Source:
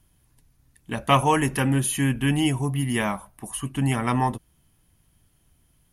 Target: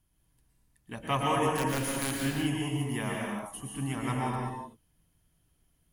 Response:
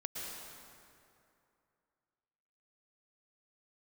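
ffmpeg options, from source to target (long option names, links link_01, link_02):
-filter_complex "[0:a]asettb=1/sr,asplit=3[link_01][link_02][link_03];[link_01]atrim=end=1.504[link_04];[link_02]atrim=start=1.5:end=2.2,asetpts=PTS-STARTPTS,afade=type=in:duration=0.004:curve=qsin,afade=type=out:start_time=0.696:duration=0.004:curve=qsin,aeval=exprs='(mod(5.01*val(0)+1,2)-1)/5.01':channel_layout=same[link_05];[link_03]atrim=start=2.196[link_06];[link_04][link_05]acrossfade=duration=0.004:curve1=hsin:curve2=qsin[link_07];[link_07][link_06]acrossfade=duration=0.004:curve1=qsin:curve2=hsin[link_08];[1:a]atrim=start_sample=2205,afade=type=out:start_time=0.44:duration=0.01,atrim=end_sample=19845[link_09];[link_08][link_09]afir=irnorm=-1:irlink=0,volume=-7.5dB"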